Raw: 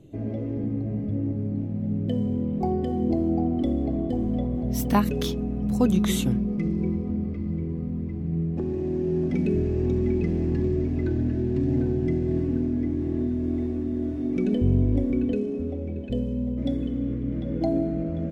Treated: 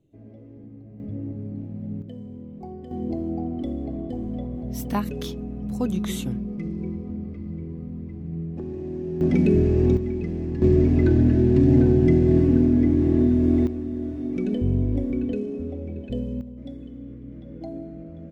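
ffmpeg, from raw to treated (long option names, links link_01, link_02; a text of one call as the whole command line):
ffmpeg -i in.wav -af "asetnsamples=nb_out_samples=441:pad=0,asendcmd='1 volume volume -5dB;2.02 volume volume -12.5dB;2.91 volume volume -4.5dB;9.21 volume volume 5.5dB;9.97 volume volume -3.5dB;10.62 volume volume 7.5dB;13.67 volume volume -1.5dB;16.41 volume volume -11dB',volume=-15.5dB" out.wav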